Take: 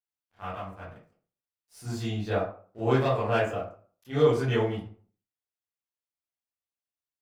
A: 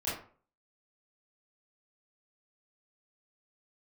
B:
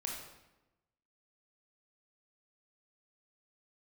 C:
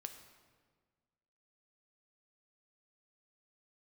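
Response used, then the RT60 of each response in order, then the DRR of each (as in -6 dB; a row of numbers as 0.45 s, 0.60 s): A; 0.45 s, 1.0 s, 1.6 s; -11.0 dB, -1.5 dB, 6.5 dB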